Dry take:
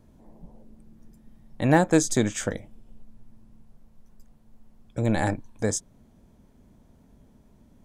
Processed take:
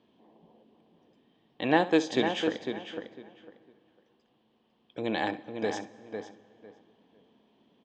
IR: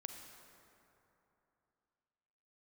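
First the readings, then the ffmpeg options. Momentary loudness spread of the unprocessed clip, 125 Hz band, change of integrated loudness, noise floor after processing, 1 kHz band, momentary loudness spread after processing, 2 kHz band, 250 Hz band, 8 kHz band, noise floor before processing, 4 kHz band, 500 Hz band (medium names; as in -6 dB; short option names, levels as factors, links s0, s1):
13 LU, -15.5 dB, -5.0 dB, -70 dBFS, -1.5 dB, 17 LU, -1.5 dB, -4.5 dB, -18.0 dB, -58 dBFS, +3.0 dB, -2.0 dB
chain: -filter_complex "[0:a]highpass=410,equalizer=f=590:t=q:w=4:g=-8,equalizer=f=880:t=q:w=4:g=-4,equalizer=f=1400:t=q:w=4:g=-10,equalizer=f=2100:t=q:w=4:g=-5,equalizer=f=3100:t=q:w=4:g=9,lowpass=f=3900:w=0.5412,lowpass=f=3900:w=1.3066,asplit=2[s0][s1];[s1]adelay=502,lowpass=f=2700:p=1,volume=0.473,asplit=2[s2][s3];[s3]adelay=502,lowpass=f=2700:p=1,volume=0.21,asplit=2[s4][s5];[s5]adelay=502,lowpass=f=2700:p=1,volume=0.21[s6];[s0][s2][s4][s6]amix=inputs=4:normalize=0,asplit=2[s7][s8];[1:a]atrim=start_sample=2205,adelay=66[s9];[s8][s9]afir=irnorm=-1:irlink=0,volume=0.282[s10];[s7][s10]amix=inputs=2:normalize=0,volume=1.26"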